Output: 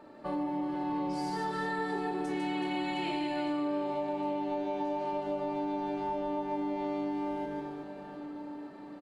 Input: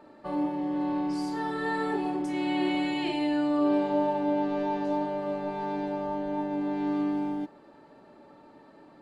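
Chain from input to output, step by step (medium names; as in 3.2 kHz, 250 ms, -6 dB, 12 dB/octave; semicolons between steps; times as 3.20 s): reverse bouncing-ball echo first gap 150 ms, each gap 1.5×, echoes 5; compression, threshold -30 dBFS, peak gain reduction 10.5 dB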